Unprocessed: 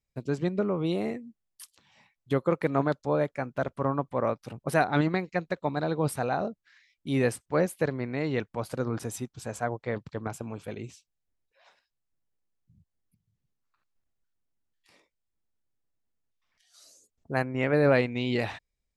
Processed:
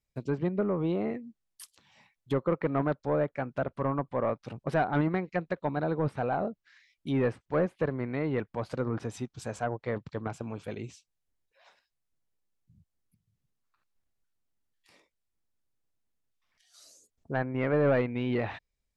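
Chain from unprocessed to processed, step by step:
soft clipping −18.5 dBFS, distortion −15 dB
treble cut that deepens with the level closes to 2,100 Hz, closed at −26.5 dBFS

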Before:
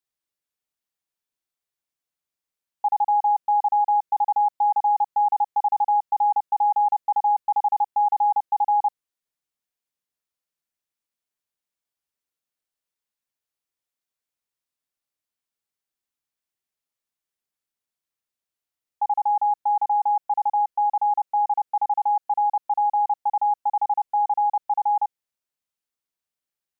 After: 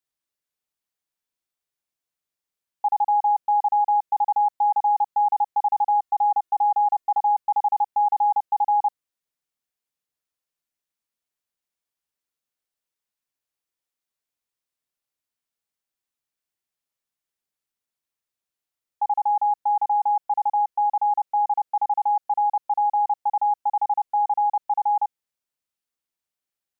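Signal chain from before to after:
0:05.88–0:07.18: comb filter 2.8 ms, depth 75%

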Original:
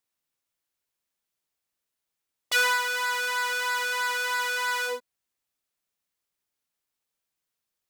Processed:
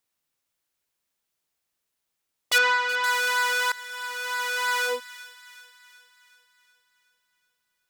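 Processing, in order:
0:02.58–0:03.04: high-frequency loss of the air 150 metres
0:03.72–0:04.85: fade in
delay with a high-pass on its return 372 ms, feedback 55%, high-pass 1,500 Hz, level −15 dB
level +3.5 dB

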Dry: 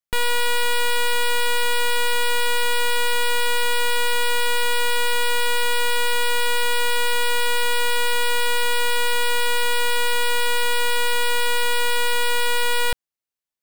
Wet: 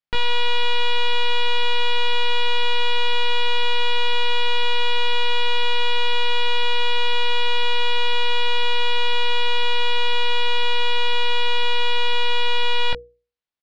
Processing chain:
low-pass filter 4,700 Hz 24 dB per octave
mains-hum notches 60/120/180/240/300/360/420/480 Hz
double-tracking delay 19 ms −5 dB

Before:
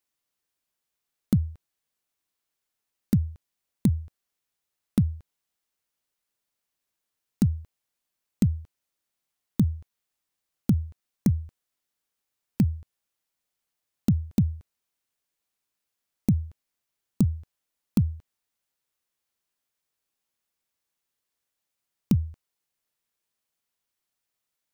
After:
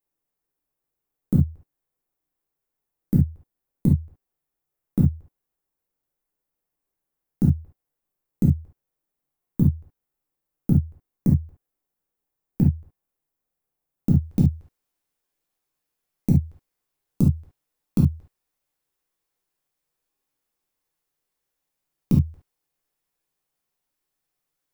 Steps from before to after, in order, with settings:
parametric band 4,100 Hz −14.5 dB 2.9 octaves, from 0:14.11 −5 dB
convolution reverb, pre-delay 6 ms, DRR −2.5 dB

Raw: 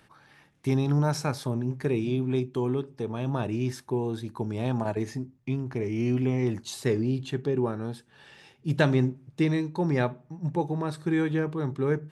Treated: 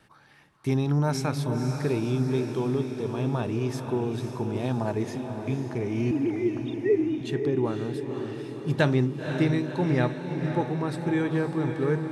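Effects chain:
0:06.11–0:07.21: three sine waves on the formant tracks
noise gate with hold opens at −53 dBFS
feedback delay with all-pass diffusion 518 ms, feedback 62%, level −7 dB

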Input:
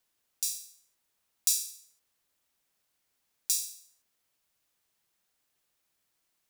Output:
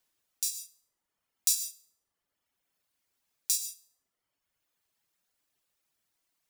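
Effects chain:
reverb reduction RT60 1.3 s
reverb whose tail is shaped and stops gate 180 ms flat, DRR 8 dB

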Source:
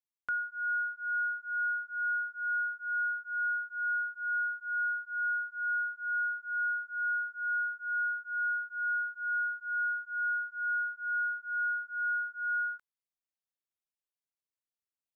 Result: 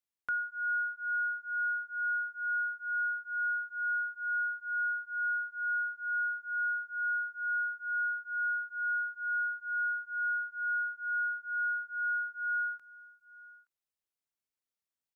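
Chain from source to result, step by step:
single-tap delay 872 ms −21.5 dB

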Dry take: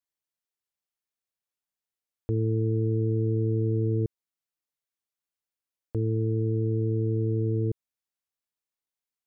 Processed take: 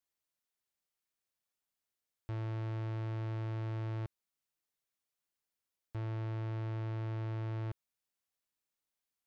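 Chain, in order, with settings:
soft clipping −37.5 dBFS, distortion −7 dB
level +1 dB

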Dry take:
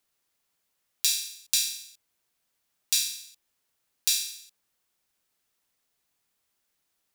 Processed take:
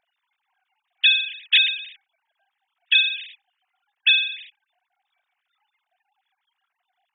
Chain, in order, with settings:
three sine waves on the formant tracks
noise reduction from a noise print of the clip's start 10 dB
level +8.5 dB

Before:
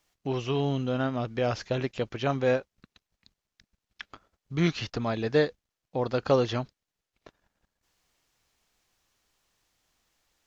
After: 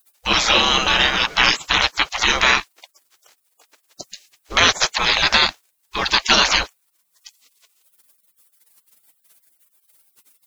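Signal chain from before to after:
gate on every frequency bin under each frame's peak −25 dB weak
boost into a limiter +32 dB
level −1 dB

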